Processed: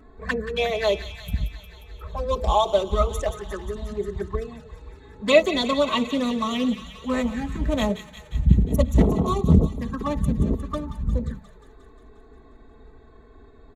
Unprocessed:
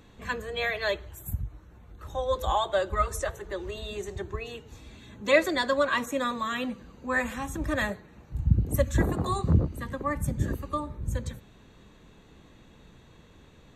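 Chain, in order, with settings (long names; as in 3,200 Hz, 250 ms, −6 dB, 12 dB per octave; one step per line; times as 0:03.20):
adaptive Wiener filter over 15 samples
comb filter 4.6 ms, depth 62%
flanger swept by the level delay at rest 3.2 ms, full sweep at −26 dBFS
on a send: delay with a high-pass on its return 178 ms, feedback 70%, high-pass 1,700 Hz, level −9.5 dB
on the sum: highs frequency-modulated by the lows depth 0.31 ms
level +7.5 dB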